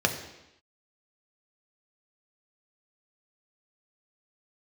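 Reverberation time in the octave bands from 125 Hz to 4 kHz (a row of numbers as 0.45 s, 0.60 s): 0.85 s, 0.90 s, 0.90 s, 0.90 s, 0.95 s, 0.95 s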